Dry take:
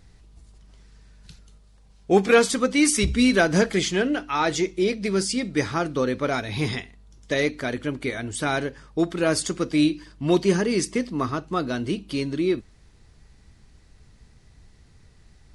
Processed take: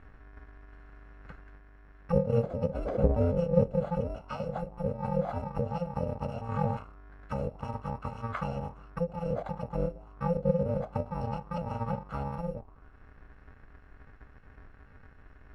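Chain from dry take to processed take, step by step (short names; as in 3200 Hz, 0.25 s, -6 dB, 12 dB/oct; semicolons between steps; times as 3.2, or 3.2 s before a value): FFT order left unsorted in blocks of 128 samples; envelope low-pass 510–1700 Hz down, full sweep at -17.5 dBFS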